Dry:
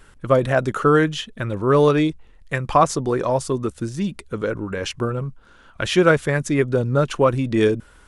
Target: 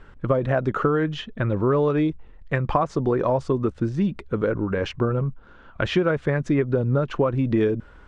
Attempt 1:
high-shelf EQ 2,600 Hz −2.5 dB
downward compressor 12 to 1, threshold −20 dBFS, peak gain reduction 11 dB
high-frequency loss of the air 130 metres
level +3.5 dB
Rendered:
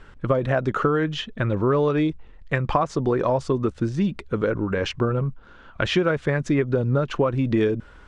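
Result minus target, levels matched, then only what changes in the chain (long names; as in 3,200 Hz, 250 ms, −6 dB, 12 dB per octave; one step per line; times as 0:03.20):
4,000 Hz band +4.0 dB
change: high-shelf EQ 2,600 Hz −10 dB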